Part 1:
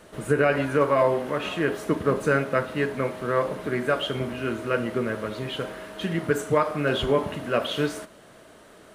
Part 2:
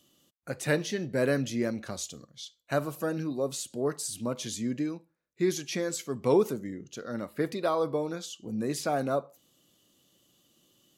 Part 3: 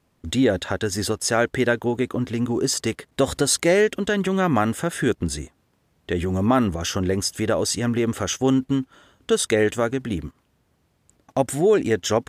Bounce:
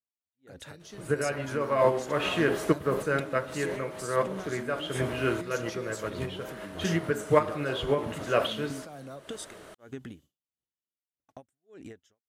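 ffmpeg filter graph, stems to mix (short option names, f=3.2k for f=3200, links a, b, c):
-filter_complex "[0:a]equalizer=f=230:t=o:w=0.22:g=-11.5,adelay=800,volume=-5.5dB[a];[1:a]acrossover=split=170|3000[b][c][d];[c]acompressor=threshold=-34dB:ratio=6[e];[b][e][d]amix=inputs=3:normalize=0,volume=-15dB,asplit=2[f][g];[2:a]acompressor=threshold=-22dB:ratio=10,aeval=exprs='val(0)*pow(10,-37*(0.5-0.5*cos(2*PI*1.6*n/s))/20)':c=same,volume=-12dB[h];[g]apad=whole_len=429777[i];[a][i]sidechaincompress=threshold=-56dB:ratio=8:attack=28:release=208[j];[f][h]amix=inputs=2:normalize=0,agate=range=-33dB:threshold=-58dB:ratio=3:detection=peak,acompressor=threshold=-43dB:ratio=6,volume=0dB[k];[j][k]amix=inputs=2:normalize=0,dynaudnorm=f=120:g=17:m=7.5dB"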